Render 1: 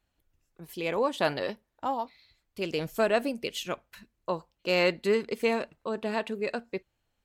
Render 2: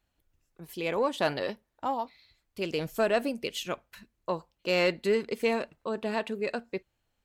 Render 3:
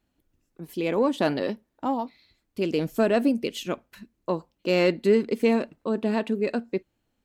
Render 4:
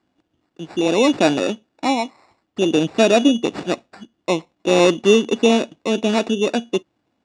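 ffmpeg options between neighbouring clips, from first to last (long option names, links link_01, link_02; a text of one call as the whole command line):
ffmpeg -i in.wav -af "asoftclip=type=tanh:threshold=-13.5dB" out.wav
ffmpeg -i in.wav -af "equalizer=frequency=260:width_type=o:width=1.4:gain=11.5" out.wav
ffmpeg -i in.wav -af "acrusher=samples=14:mix=1:aa=0.000001,highpass=110,equalizer=frequency=320:width_type=q:width=4:gain=5,equalizer=frequency=720:width_type=q:width=4:gain=5,equalizer=frequency=3100:width_type=q:width=4:gain=8,lowpass=frequency=7600:width=0.5412,lowpass=frequency=7600:width=1.3066,volume=5.5dB" out.wav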